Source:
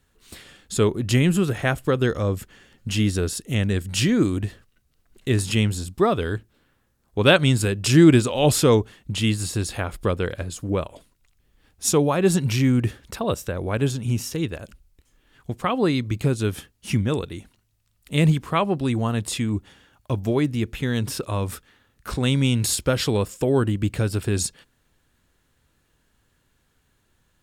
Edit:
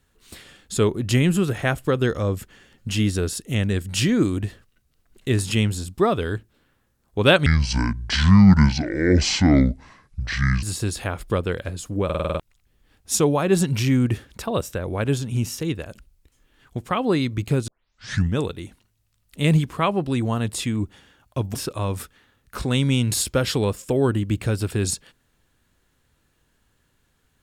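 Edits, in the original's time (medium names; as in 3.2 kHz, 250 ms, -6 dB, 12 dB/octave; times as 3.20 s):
7.46–9.36 s: speed 60%
10.78 s: stutter in place 0.05 s, 7 plays
16.41 s: tape start 0.69 s
20.28–21.07 s: delete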